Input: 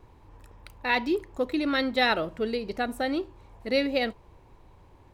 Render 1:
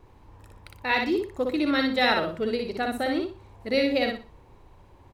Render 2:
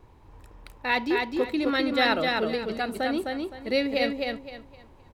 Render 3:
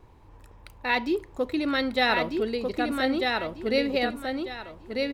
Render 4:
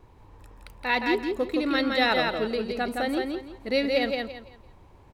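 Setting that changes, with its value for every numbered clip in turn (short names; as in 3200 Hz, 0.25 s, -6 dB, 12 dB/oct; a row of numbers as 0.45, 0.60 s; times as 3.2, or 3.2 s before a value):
feedback echo, time: 60, 258, 1245, 168 ms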